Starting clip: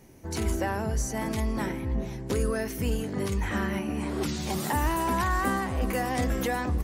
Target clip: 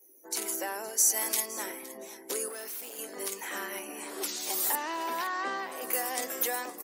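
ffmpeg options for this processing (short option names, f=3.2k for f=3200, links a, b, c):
-filter_complex "[0:a]asettb=1/sr,asplit=3[a][b][c];[a]atrim=end=0.984[d];[b]atrim=start=0.98:end=1.46,asetpts=PTS-STARTPTS,afade=t=in:d=0.004:c=qsin,afade=t=out:st=0.476:d=0.004:c=qsin,highshelf=f=2.1k:g=7.5[e];[c]atrim=start=1.456[f];[d][e]acrossfade=d=0.004:c1=hsin:c2=qsin[g];[g][f]acrossfade=d=0.004:c1=qsin:c2=hsin,asettb=1/sr,asplit=3[h][i][j];[h]atrim=end=4.754[k];[i]atrim=start=4.75:end=5.72,asetpts=PTS-STARTPTS,afade=t=in:d=0.004:c=qsin,afade=t=out:st=0.966:d=0.004:c=qsin,lowpass=f=5.1k:w=0.5412,lowpass=f=5.1k:w=1.3066[l];[j]atrim=start=5.716[m];[k][l]acrossfade=d=0.004:c1=hsin:c2=qsin[n];[n][m]acrossfade=d=0.004:c1=qsin:c2=hsin,aemphasis=mode=production:type=75fm,aecho=1:1:515|1030:0.133|0.0333,asettb=1/sr,asplit=3[o][p][q];[o]atrim=end=2.484[r];[p]atrim=start=2.48:end=2.99,asetpts=PTS-STARTPTS,afade=t=in:d=0.004:c=qsin,afade=t=out:st=0.506:d=0.004:c=qsin,volume=32dB,asoftclip=hard,volume=-32dB[s];[q]atrim=start=2.986[t];[r][s]acrossfade=d=0.004:c1=hsin:c2=qsin[u];[u][t]acrossfade=d=0.004:c1=qsin:c2=hsin,highpass=f=350:w=0.5412,highpass=f=350:w=1.3066,afftdn=nr=18:nf=-52,volume=-5dB"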